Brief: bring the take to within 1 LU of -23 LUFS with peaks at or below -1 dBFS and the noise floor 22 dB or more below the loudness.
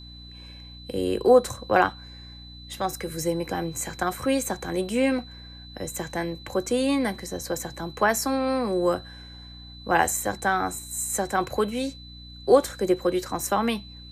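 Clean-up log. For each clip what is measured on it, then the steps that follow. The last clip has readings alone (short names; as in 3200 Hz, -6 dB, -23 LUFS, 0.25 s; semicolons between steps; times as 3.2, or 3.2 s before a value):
hum 60 Hz; harmonics up to 300 Hz; hum level -43 dBFS; steady tone 4000 Hz; tone level -45 dBFS; loudness -25.5 LUFS; peak -4.5 dBFS; loudness target -23.0 LUFS
-> de-hum 60 Hz, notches 5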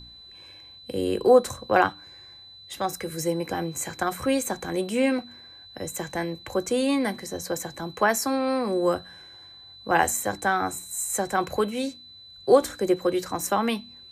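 hum none; steady tone 4000 Hz; tone level -45 dBFS
-> notch 4000 Hz, Q 30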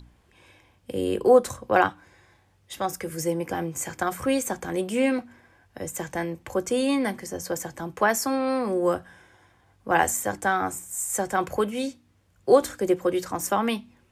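steady tone none; loudness -25.5 LUFS; peak -4.5 dBFS; loudness target -23.0 LUFS
-> gain +2.5 dB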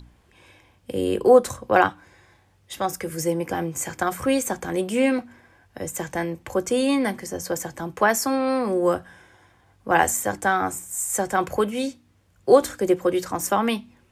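loudness -23.0 LUFS; peak -2.0 dBFS; noise floor -60 dBFS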